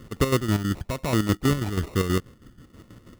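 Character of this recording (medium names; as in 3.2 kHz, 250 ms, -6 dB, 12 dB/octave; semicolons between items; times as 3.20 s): phasing stages 6, 1.1 Hz, lowest notch 750–2700 Hz; chopped level 6.2 Hz, depth 60%, duty 50%; aliases and images of a low sample rate 1.6 kHz, jitter 0%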